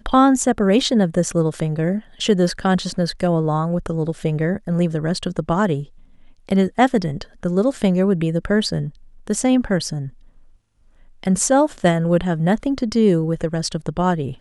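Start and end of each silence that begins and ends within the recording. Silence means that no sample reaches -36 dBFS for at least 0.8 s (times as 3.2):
10.1–11.23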